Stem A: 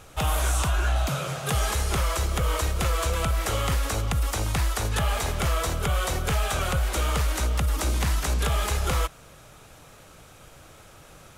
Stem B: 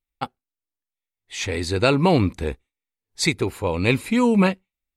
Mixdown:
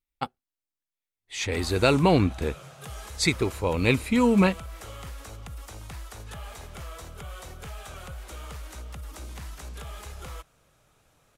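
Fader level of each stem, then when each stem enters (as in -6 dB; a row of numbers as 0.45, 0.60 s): -15.0, -2.5 dB; 1.35, 0.00 s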